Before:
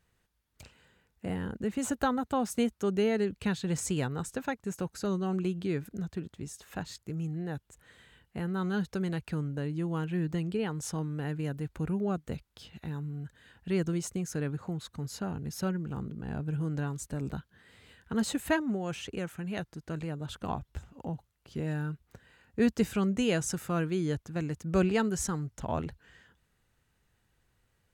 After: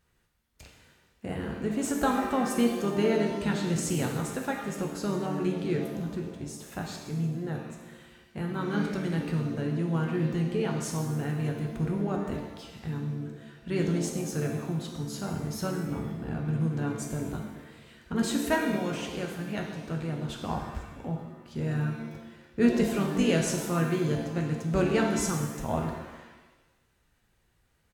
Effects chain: harmoniser -4 st -11 dB; shimmer reverb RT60 1.1 s, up +7 st, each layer -8 dB, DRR 1.5 dB

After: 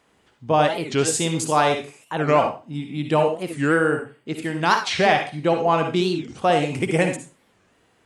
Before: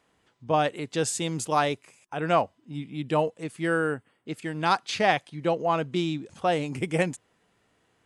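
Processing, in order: in parallel at -1 dB: limiter -15 dBFS, peak gain reduction 8 dB; on the sum: reverb RT60 0.30 s, pre-delay 48 ms, DRR 4.5 dB; record warp 45 rpm, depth 250 cents

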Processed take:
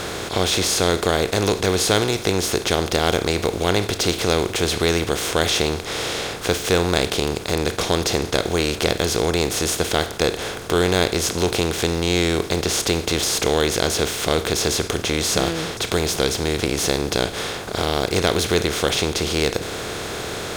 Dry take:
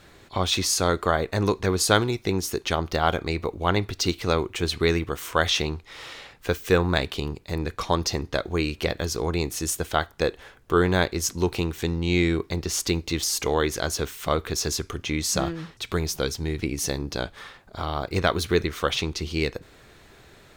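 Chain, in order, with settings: per-bin compression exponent 0.4; dynamic EQ 1200 Hz, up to -6 dB, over -32 dBFS, Q 1.6; gain -1.5 dB

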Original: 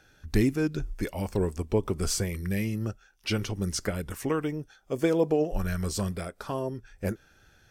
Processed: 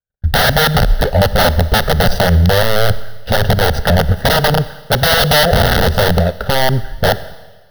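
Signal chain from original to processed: median filter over 41 samples; gate -56 dBFS, range -57 dB; 0.86–3.46 transient shaper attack -6 dB, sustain 0 dB; wrapped overs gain 26.5 dB; fixed phaser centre 1600 Hz, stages 8; Schroeder reverb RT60 1.3 s, combs from 28 ms, DRR 18.5 dB; maximiser +28.5 dB; gain -1 dB

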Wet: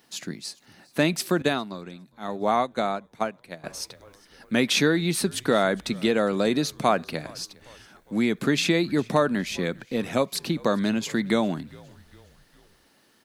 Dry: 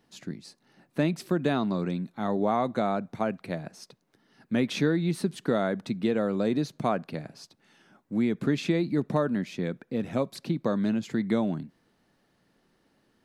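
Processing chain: tilt +2.5 dB/oct; frequency-shifting echo 0.407 s, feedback 52%, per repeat -64 Hz, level -24 dB; 1.42–3.64 upward expander 2.5:1, over -35 dBFS; gain +7 dB

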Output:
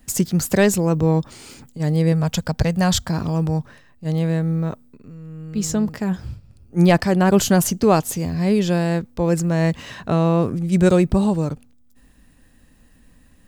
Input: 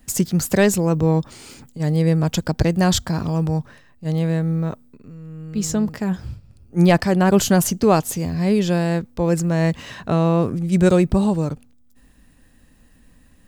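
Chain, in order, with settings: 2.12–3.09 bell 330 Hz -10.5 dB 0.49 oct

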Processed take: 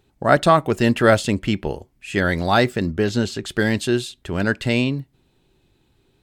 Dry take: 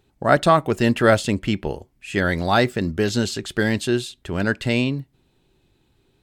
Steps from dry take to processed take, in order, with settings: 2.86–3.45 high shelf 3800 Hz -7.5 dB; gain +1 dB

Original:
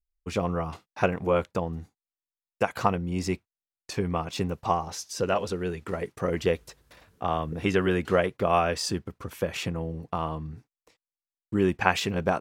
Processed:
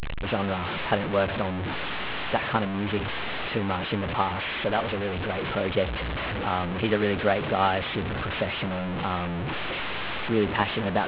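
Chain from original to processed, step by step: delta modulation 16 kbps, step -23.5 dBFS; varispeed +12%

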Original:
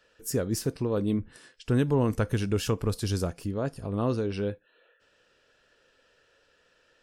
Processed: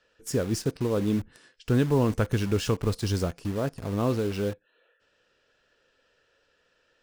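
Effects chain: LPF 8200 Hz 12 dB/oct; in parallel at -3.5 dB: bit-crush 6-bit; on the sum: gain -3 dB

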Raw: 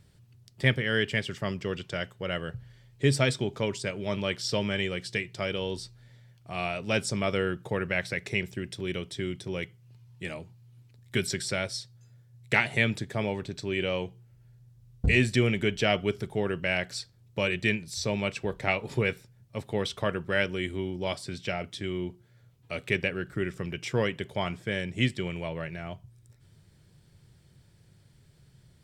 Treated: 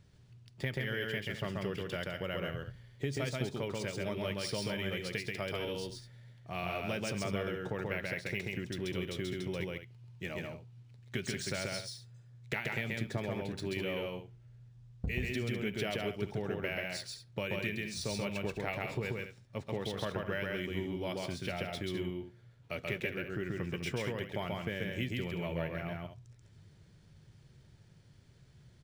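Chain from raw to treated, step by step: compressor, threshold -30 dBFS, peak gain reduction 12.5 dB; loudspeakers at several distances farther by 46 m -2 dB, 70 m -11 dB; decimation joined by straight lines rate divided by 3×; gain -3 dB

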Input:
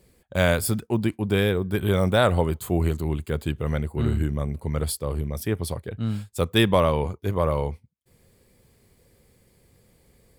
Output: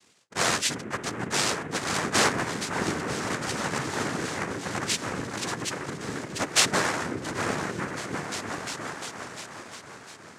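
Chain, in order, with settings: half-wave gain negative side -12 dB; spectral gate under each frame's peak -10 dB weak; high shelf 4600 Hz +9 dB; on a send: repeats that get brighter 0.351 s, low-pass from 200 Hz, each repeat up 1 oct, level 0 dB; on the sum: noise vocoder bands 3; gain +4 dB

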